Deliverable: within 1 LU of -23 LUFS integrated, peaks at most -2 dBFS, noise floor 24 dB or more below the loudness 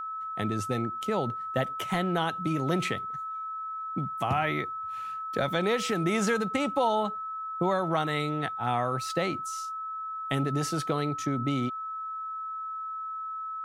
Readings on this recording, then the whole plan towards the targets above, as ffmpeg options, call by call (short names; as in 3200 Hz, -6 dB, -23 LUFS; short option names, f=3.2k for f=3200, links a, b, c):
steady tone 1300 Hz; tone level -33 dBFS; loudness -30.0 LUFS; peak -14.0 dBFS; loudness target -23.0 LUFS
-> -af "bandreject=f=1.3k:w=30"
-af "volume=7dB"